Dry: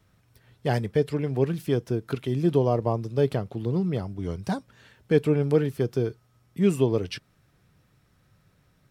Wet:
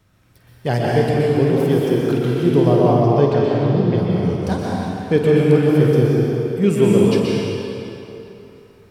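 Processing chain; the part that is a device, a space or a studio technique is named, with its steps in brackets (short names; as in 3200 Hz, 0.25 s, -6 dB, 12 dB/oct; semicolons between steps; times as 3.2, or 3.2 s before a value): 2.59–3.98 LPF 6400 Hz 24 dB/oct; tunnel (flutter echo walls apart 8.4 m, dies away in 0.29 s; reverb RT60 3.1 s, pre-delay 0.115 s, DRR -4.5 dB); gain +4 dB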